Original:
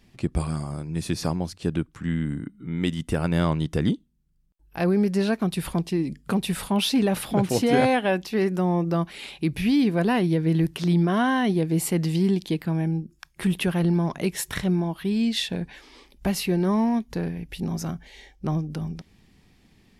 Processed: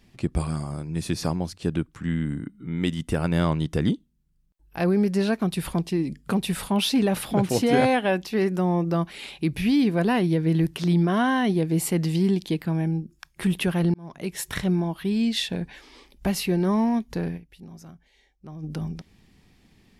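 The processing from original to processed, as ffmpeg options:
-filter_complex "[0:a]asplit=4[a][b][c][d];[a]atrim=end=13.94,asetpts=PTS-STARTPTS,afade=t=out:st=13.936:d=0.004:c=hsin[e];[b]atrim=start=13.94:end=17.57,asetpts=PTS-STARTPTS,afade=t=in:d=0.6,afade=t=out:st=3.42:d=0.21:c=exp:silence=0.177828[f];[c]atrim=start=17.57:end=18.43,asetpts=PTS-STARTPTS,volume=-15dB[g];[d]atrim=start=18.43,asetpts=PTS-STARTPTS,afade=t=in:d=0.21:c=exp:silence=0.177828[h];[e][f][g][h]concat=n=4:v=0:a=1"

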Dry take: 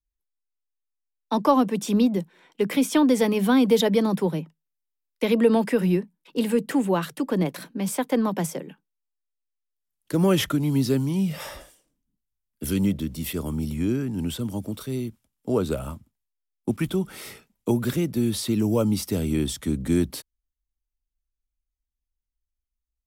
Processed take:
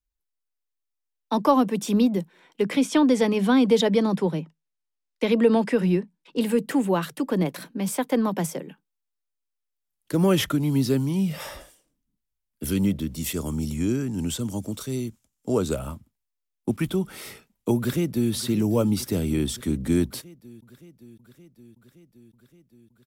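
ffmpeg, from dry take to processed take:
-filter_complex "[0:a]asettb=1/sr,asplit=3[a][b][c];[a]atrim=end=2.624[d];[b]atrim=start=2.62:end=6.41,asetpts=PTS-STARTPTS,afade=t=in:d=0.004:c=qsin,afade=t=out:st=3.786:d=0.004:c=qsin,lowpass=8.2k[e];[c]atrim=start=6.406[f];[d][e]acrossfade=d=0.004:c1=hsin:c2=qsin[g];[g][f]acrossfade=d=0.004:c1=qsin:c2=hsin,asettb=1/sr,asplit=3[h][i][j];[h]atrim=end=13.174[k];[i]atrim=start=13.17:end=15.77,asetpts=PTS-STARTPTS,afade=t=in:d=0.004:c=qsin,afade=t=out:st=2.596:d=0.004:c=qsin,equalizer=f=6.9k:w=1.7:g=10[l];[j]atrim=start=15.766[m];[k][l]acrossfade=d=0.004:c1=hsin:c2=qsin[n];[n][m]acrossfade=d=0.004:c1=qsin:c2=hsin,asplit=2[o][p];[p]afade=t=in:st=17.77:d=0.01,afade=t=out:st=18.32:d=0.01,aecho=0:1:570|1140|1710|2280|2850|3420|3990|4560|5130|5700|6270:0.188365|0.141274|0.105955|0.0794664|0.0595998|0.0446999|0.0335249|0.0251437|0.0188578|0.0141433|0.0106075[q];[o][q]amix=inputs=2:normalize=0"

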